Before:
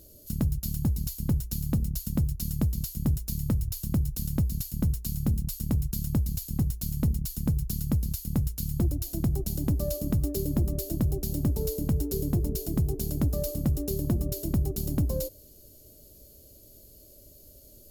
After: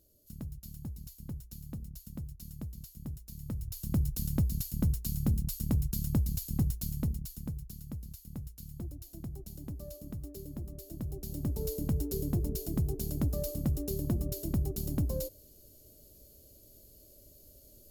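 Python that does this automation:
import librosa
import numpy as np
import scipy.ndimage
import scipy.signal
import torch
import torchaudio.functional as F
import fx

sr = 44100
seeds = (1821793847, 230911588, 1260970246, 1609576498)

y = fx.gain(x, sr, db=fx.line((3.31, -15.0), (4.0, -2.5), (6.74, -2.5), (7.75, -15.0), (10.77, -15.0), (11.72, -4.5)))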